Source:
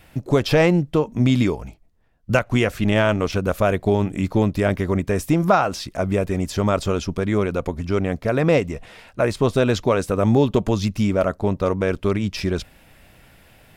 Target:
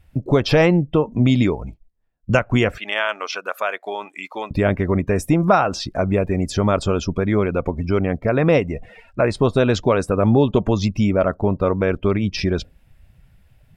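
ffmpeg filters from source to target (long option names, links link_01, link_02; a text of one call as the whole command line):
ffmpeg -i in.wav -filter_complex "[0:a]asettb=1/sr,asplit=3[link_01][link_02][link_03];[link_01]atrim=end=2.784[link_04];[link_02]atrim=start=2.78:end=4.51,asetpts=PTS-STARTPTS,afade=type=in:duration=0.004:curve=qsin,afade=type=out:start_time=1.726:duration=0.004:curve=qsin,highpass=1000[link_05];[link_03]atrim=start=4.506[link_06];[link_04][link_05]acrossfade=duration=0.004:curve1=hsin:curve2=qsin[link_07];[link_07][link_06]acrossfade=duration=0.004:curve1=qsin:curve2=hsin,afftdn=noise_reduction=20:noise_floor=-39,asplit=2[link_08][link_09];[link_09]acompressor=threshold=-29dB:ratio=6,volume=0dB[link_10];[link_08][link_10]amix=inputs=2:normalize=0" out.wav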